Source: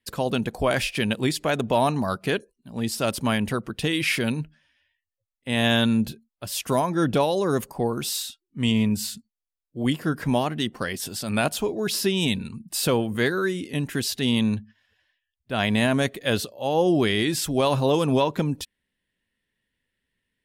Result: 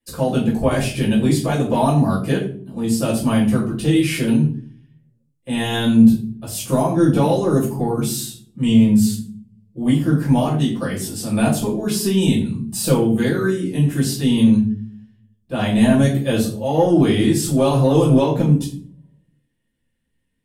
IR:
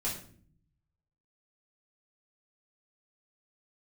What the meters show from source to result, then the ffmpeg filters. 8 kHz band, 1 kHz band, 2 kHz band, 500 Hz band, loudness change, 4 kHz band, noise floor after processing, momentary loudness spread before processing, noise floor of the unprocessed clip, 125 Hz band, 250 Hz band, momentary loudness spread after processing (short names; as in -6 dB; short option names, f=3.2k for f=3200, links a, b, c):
+4.0 dB, +2.5 dB, -2.0 dB, +4.5 dB, +6.5 dB, -1.0 dB, -69 dBFS, 9 LU, -85 dBFS, +9.5 dB, +9.0 dB, 10 LU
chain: -filter_complex "[0:a]equalizer=f=9.8k:t=o:w=1.6:g=8.5,acrossover=split=1100[a][b];[a]acontrast=90[c];[c][b]amix=inputs=2:normalize=0[d];[1:a]atrim=start_sample=2205,asetrate=52920,aresample=44100[e];[d][e]afir=irnorm=-1:irlink=0,volume=-5.5dB"